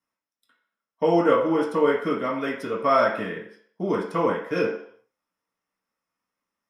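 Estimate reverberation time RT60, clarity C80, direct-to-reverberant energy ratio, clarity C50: 0.60 s, 9.5 dB, −6.5 dB, 6.0 dB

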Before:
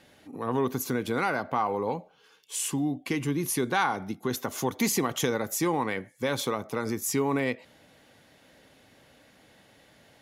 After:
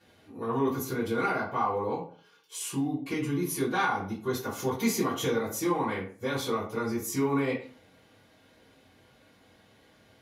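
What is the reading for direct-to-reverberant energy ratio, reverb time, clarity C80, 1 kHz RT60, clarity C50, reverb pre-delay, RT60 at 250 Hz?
−10.5 dB, 0.45 s, 12.0 dB, 0.40 s, 7.5 dB, 3 ms, 0.45 s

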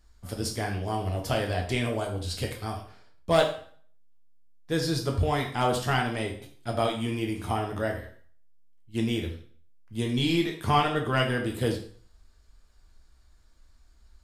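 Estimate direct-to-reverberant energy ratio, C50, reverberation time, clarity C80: 1.0 dB, 8.0 dB, 0.50 s, 11.5 dB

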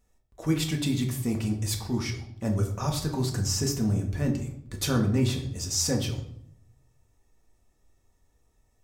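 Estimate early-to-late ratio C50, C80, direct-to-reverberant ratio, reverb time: 9.0 dB, 12.0 dB, 1.5 dB, 0.70 s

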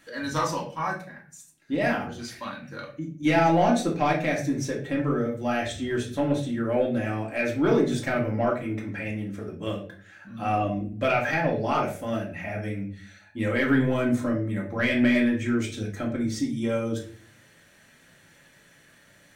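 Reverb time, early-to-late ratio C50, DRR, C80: 0.45 s, 7.5 dB, −3.0 dB, 12.5 dB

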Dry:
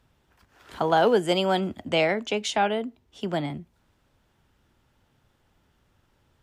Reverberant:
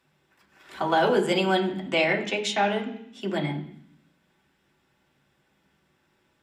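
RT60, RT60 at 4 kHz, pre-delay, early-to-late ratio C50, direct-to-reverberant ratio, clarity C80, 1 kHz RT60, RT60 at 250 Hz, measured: 0.65 s, 0.85 s, 3 ms, 10.5 dB, −1.0 dB, 13.5 dB, 0.65 s, 0.90 s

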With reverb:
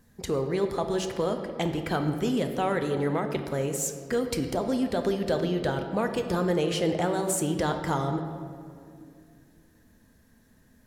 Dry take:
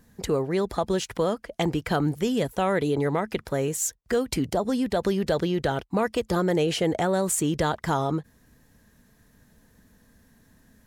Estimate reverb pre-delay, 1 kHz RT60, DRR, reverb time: 8 ms, 2.2 s, 5.5 dB, 2.4 s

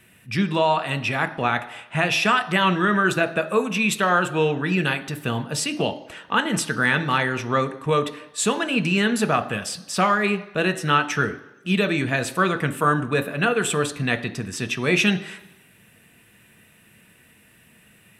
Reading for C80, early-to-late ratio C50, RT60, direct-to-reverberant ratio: 17.5 dB, 15.0 dB, 1.0 s, 8.0 dB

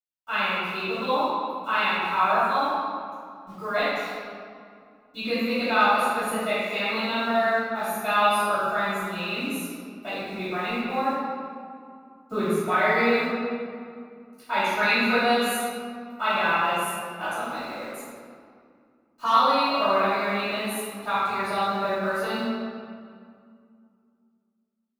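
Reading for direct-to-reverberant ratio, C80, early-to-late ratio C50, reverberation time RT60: −17.0 dB, −1.5 dB, −4.5 dB, 2.3 s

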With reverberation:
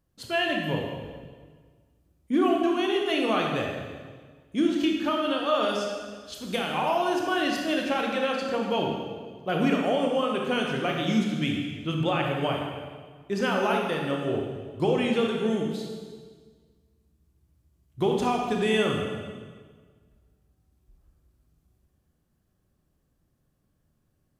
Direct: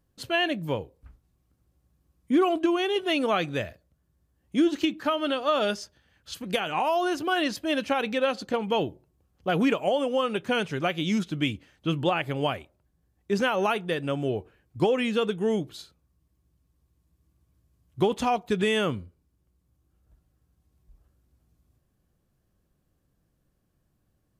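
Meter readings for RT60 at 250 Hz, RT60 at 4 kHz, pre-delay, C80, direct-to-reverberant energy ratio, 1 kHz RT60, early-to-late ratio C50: 1.8 s, 1.5 s, 23 ms, 3.5 dB, 0.0 dB, 1.5 s, 2.0 dB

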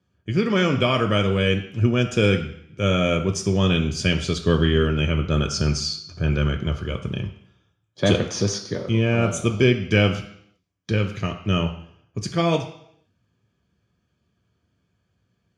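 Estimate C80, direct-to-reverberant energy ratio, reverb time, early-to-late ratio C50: 12.5 dB, 4.5 dB, 0.70 s, 10.0 dB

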